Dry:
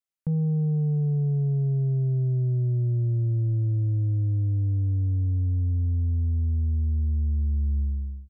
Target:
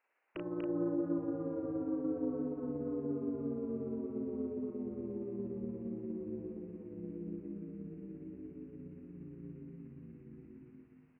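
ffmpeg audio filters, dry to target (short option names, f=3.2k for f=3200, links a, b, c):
-filter_complex "[0:a]highpass=f=600:w=0.5412,highpass=f=600:w=1.3066,acompressor=threshold=-56dB:ratio=2,aresample=8000,aeval=exprs='0.00891*sin(PI/2*2.51*val(0)/0.00891)':c=same,aresample=44100,asplit=3[a][b][c];[b]asetrate=22050,aresample=44100,atempo=2,volume=-12dB[d];[c]asetrate=37084,aresample=44100,atempo=1.18921,volume=-3dB[e];[a][d][e]amix=inputs=3:normalize=0,tremolo=f=23:d=0.519,asplit=2[f][g];[g]adelay=26,volume=-4dB[h];[f][h]amix=inputs=2:normalize=0,aecho=1:1:180:0.631,asetrate=32667,aresample=44100,volume=7.5dB"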